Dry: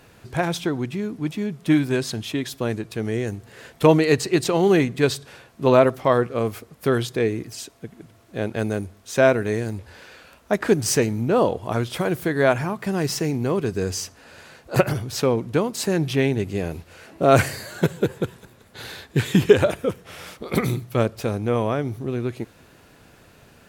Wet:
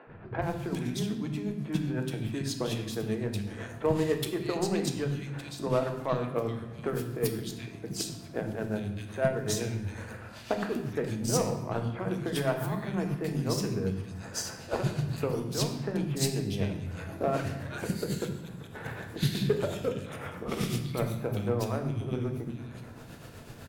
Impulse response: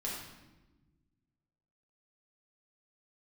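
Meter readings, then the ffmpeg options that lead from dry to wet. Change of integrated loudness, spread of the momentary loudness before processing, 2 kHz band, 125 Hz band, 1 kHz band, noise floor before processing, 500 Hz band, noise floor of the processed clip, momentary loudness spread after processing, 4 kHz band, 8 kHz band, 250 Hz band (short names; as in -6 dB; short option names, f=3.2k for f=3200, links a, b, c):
-10.0 dB, 14 LU, -12.0 dB, -6.0 dB, -10.5 dB, -53 dBFS, -11.0 dB, -46 dBFS, 10 LU, -6.5 dB, -6.0 dB, -9.0 dB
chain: -filter_complex "[0:a]equalizer=f=140:w=0.75:g=4.5,acompressor=threshold=-34dB:ratio=4,acrossover=split=260|2100[a][b][c];[a]adelay=70[d];[c]adelay=420[e];[d][b][e]amix=inputs=3:normalize=0,tremolo=f=8:d=0.51,aeval=exprs='0.0891*(cos(1*acos(clip(val(0)/0.0891,-1,1)))-cos(1*PI/2))+0.00398*(cos(7*acos(clip(val(0)/0.0891,-1,1)))-cos(7*PI/2))':c=same,asplit=2[f][g];[1:a]atrim=start_sample=2205[h];[g][h]afir=irnorm=-1:irlink=0,volume=-3dB[i];[f][i]amix=inputs=2:normalize=0,volume=4dB"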